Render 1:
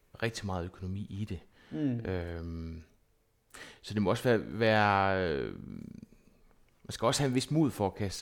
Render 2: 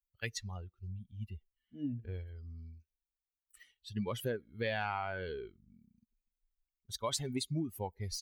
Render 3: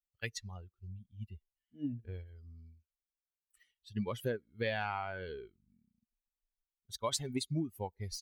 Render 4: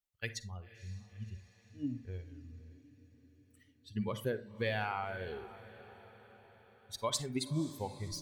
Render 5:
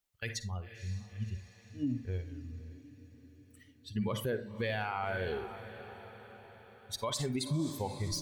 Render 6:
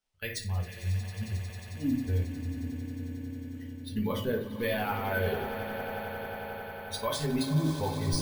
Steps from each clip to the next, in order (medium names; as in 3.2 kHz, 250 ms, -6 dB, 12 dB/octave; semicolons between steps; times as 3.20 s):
expander on every frequency bin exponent 2; treble shelf 2.4 kHz +8 dB; compression 6:1, threshold -32 dBFS, peak gain reduction 9.5 dB
upward expansion 1.5:1, over -53 dBFS; trim +1.5 dB
echo that smears into a reverb 529 ms, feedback 56%, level -16 dB; reverberation RT60 0.40 s, pre-delay 38 ms, DRR 12 dB
peak limiter -31.5 dBFS, peak gain reduction 11 dB; trim +6.5 dB
echo with a slow build-up 90 ms, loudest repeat 8, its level -16 dB; simulated room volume 120 m³, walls furnished, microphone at 1.5 m; careless resampling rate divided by 3×, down filtered, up hold